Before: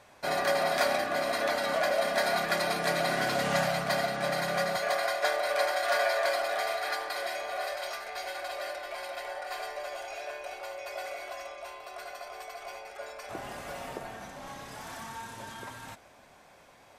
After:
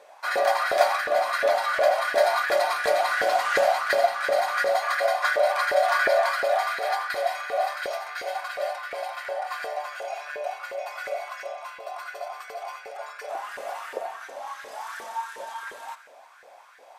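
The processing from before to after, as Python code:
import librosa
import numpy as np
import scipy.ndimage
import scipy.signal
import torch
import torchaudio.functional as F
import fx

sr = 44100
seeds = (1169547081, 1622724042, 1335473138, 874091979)

y = fx.echo_feedback(x, sr, ms=86, feedback_pct=44, wet_db=-14.5)
y = fx.filter_lfo_highpass(y, sr, shape='saw_up', hz=2.8, low_hz=440.0, high_hz=1700.0, q=4.3)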